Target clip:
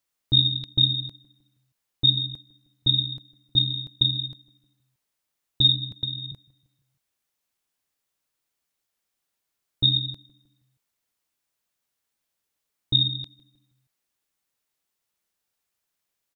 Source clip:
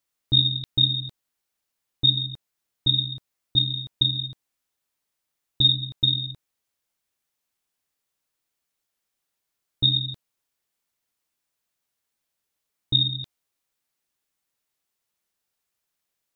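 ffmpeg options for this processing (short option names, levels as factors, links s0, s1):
-filter_complex "[0:a]asettb=1/sr,asplit=3[s0][s1][s2];[s0]atrim=end=5.914[s3];[s1]atrim=start=5.91:end=6.32,asetpts=PTS-STARTPTS,afade=t=in:d=0.004:c=qsin,afade=t=out:st=0.406:d=0.004:c=qsin,acrossover=split=260|1900[s4][s5][s6];[s4]acompressor=threshold=0.0141:ratio=4[s7];[s5]acompressor=threshold=0.00251:ratio=4[s8];[s6]acompressor=threshold=0.0355:ratio=4[s9];[s7][s8][s9]amix=inputs=3:normalize=0[s10];[s2]atrim=start=6.316[s11];[s3][s10]acrossfade=d=0.004:c1=hsin:c2=qsin[s12];[s12][s11]acrossfade=d=0.004:c1=qsin:c2=hsin,asplit=2[s13][s14];[s14]adelay=157,lowpass=f=2500:p=1,volume=0.0944,asplit=2[s15][s16];[s16]adelay=157,lowpass=f=2500:p=1,volume=0.54,asplit=2[s17][s18];[s18]adelay=157,lowpass=f=2500:p=1,volume=0.54,asplit=2[s19][s20];[s20]adelay=157,lowpass=f=2500:p=1,volume=0.54[s21];[s13][s15][s17][s19][s21]amix=inputs=5:normalize=0"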